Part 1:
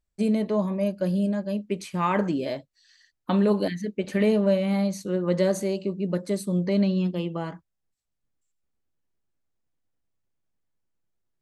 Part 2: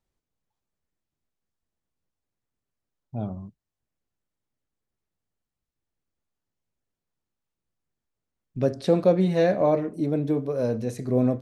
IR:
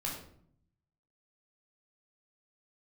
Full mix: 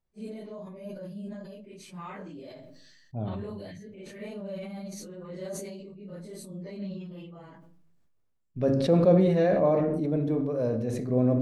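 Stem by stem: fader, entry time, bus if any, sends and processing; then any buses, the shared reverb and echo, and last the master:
−17.5 dB, 0.00 s, send −22.5 dB, random phases in long frames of 100 ms
−5.5 dB, 0.00 s, send −7.5 dB, high-shelf EQ 3,200 Hz −8.5 dB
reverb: on, RT60 0.60 s, pre-delay 11 ms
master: level that may fall only so fast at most 28 dB per second

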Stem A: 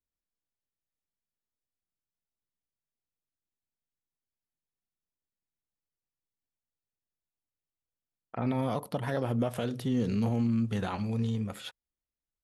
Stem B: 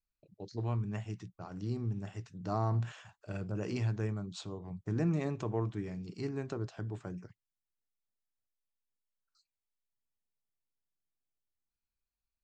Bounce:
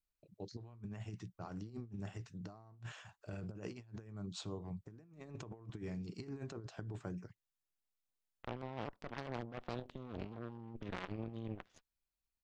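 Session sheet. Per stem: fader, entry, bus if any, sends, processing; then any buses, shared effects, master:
−14.0 dB, 0.10 s, no send, low-pass filter 3,500 Hz 24 dB per octave; harmonic generator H 6 −15 dB, 7 −16 dB, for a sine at −17.5 dBFS
−5.5 dB, 0.00 s, no send, no processing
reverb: not used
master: compressor whose output falls as the input rises −45 dBFS, ratio −0.5

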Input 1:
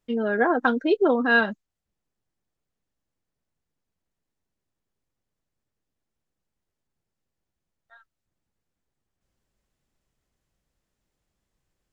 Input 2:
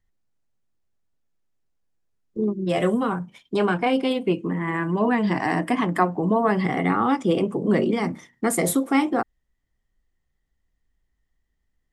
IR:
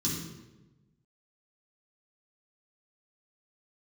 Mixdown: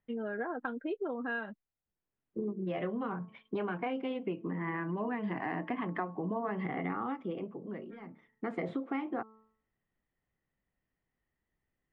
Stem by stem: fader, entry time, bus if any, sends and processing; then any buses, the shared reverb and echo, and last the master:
−9.5 dB, 0.00 s, no send, no processing
−4.0 dB, 0.00 s, no send, high-pass filter 120 Hz 12 dB per octave; hum removal 219.5 Hz, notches 6; automatic ducking −21 dB, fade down 0.95 s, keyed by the first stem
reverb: not used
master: low-pass filter 2,800 Hz 24 dB per octave; downward compressor 5 to 1, threshold −33 dBFS, peak gain reduction 13.5 dB

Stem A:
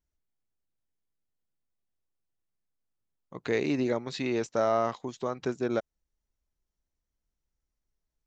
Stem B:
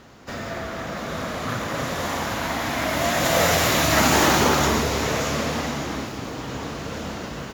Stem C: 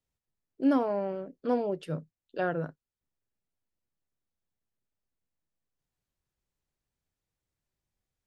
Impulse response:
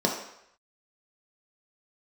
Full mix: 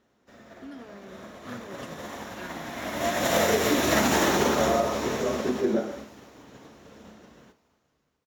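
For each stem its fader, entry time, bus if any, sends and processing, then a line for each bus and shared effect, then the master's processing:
−7.5 dB, 0.00 s, send −6.5 dB, no echo send, random phases in long frames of 50 ms
+1.0 dB, 0.00 s, send −19.5 dB, echo send −22 dB, expander for the loud parts 2.5 to 1, over −32 dBFS
−2.5 dB, 0.00 s, no send, no echo send, flat-topped bell 770 Hz −16 dB; brickwall limiter −28 dBFS, peak gain reduction 11 dB; low-shelf EQ 330 Hz −12 dB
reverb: on, RT60 0.75 s, pre-delay 3 ms
echo: repeating echo 649 ms, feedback 39%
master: downward compressor 6 to 1, threshold −19 dBFS, peak gain reduction 8 dB

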